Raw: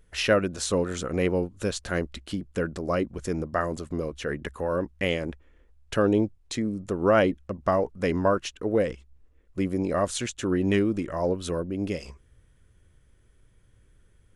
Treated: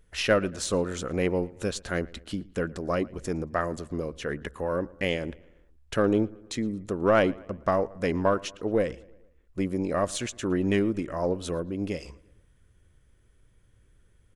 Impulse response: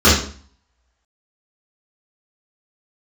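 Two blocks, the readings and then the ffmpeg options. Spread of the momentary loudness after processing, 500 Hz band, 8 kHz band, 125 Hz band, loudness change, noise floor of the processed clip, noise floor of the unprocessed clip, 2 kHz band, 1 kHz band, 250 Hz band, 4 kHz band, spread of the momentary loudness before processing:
9 LU, -1.5 dB, -1.5 dB, -2.0 dB, -1.5 dB, -62 dBFS, -61 dBFS, -1.0 dB, -1.0 dB, -1.5 dB, -1.5 dB, 9 LU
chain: -filter_complex "[0:a]aeval=exprs='0.398*(cos(1*acos(clip(val(0)/0.398,-1,1)))-cos(1*PI/2))+0.0224*(cos(3*acos(clip(val(0)/0.398,-1,1)))-cos(3*PI/2))+0.00794*(cos(6*acos(clip(val(0)/0.398,-1,1)))-cos(6*PI/2))':c=same,asplit=2[a][b];[b]adelay=114,lowpass=f=3.5k:p=1,volume=-22.5dB,asplit=2[c][d];[d]adelay=114,lowpass=f=3.5k:p=1,volume=0.53,asplit=2[e][f];[f]adelay=114,lowpass=f=3.5k:p=1,volume=0.53,asplit=2[g][h];[h]adelay=114,lowpass=f=3.5k:p=1,volume=0.53[i];[a][c][e][g][i]amix=inputs=5:normalize=0"

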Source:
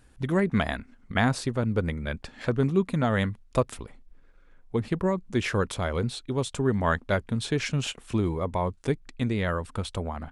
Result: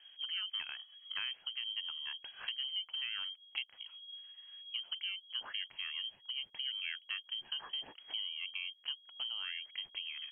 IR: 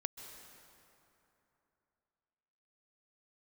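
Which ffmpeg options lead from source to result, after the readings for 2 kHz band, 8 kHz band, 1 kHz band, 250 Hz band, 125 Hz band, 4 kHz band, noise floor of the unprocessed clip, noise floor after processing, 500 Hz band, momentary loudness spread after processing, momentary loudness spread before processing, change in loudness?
-11.0 dB, under -40 dB, -25.0 dB, under -40 dB, under -40 dB, +4.5 dB, -56 dBFS, -64 dBFS, under -40 dB, 6 LU, 8 LU, -11.5 dB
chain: -af "highshelf=f=2.3k:g=-9.5,lowpass=f=2.8k:t=q:w=0.5098,lowpass=f=2.8k:t=q:w=0.6013,lowpass=f=2.8k:t=q:w=0.9,lowpass=f=2.8k:t=q:w=2.563,afreqshift=-3300,acompressor=threshold=-45dB:ratio=2.5"

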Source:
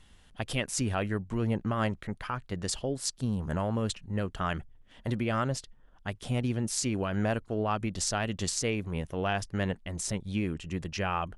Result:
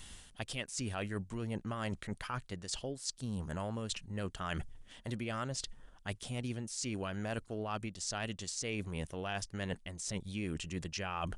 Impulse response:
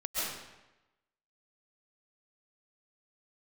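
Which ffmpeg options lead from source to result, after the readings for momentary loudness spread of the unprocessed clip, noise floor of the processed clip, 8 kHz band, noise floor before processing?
6 LU, -60 dBFS, -6.5 dB, -58 dBFS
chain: -filter_complex "[0:a]aemphasis=mode=production:type=75kf,areverse,acompressor=threshold=-41dB:ratio=5,areverse,aresample=22050,aresample=44100,acrossover=split=7200[a][b];[b]acompressor=threshold=-57dB:ratio=4:attack=1:release=60[c];[a][c]amix=inputs=2:normalize=0,volume=4.5dB"

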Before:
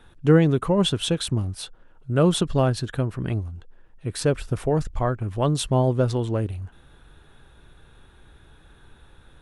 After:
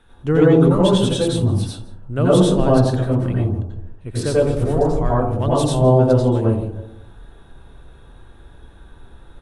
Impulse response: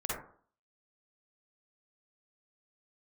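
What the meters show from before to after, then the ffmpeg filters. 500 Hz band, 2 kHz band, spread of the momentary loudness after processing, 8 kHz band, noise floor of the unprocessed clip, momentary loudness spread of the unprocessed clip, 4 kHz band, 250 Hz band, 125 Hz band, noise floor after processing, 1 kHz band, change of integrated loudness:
+7.5 dB, +2.0 dB, 15 LU, +1.5 dB, -53 dBFS, 13 LU, +1.0 dB, +6.5 dB, +5.5 dB, -46 dBFS, +6.0 dB, +6.0 dB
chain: -filter_complex "[0:a]aecho=1:1:166:0.0841[a];[1:a]atrim=start_sample=2205,asetrate=24255,aresample=44100[b];[a][b]afir=irnorm=-1:irlink=0,volume=-3.5dB"

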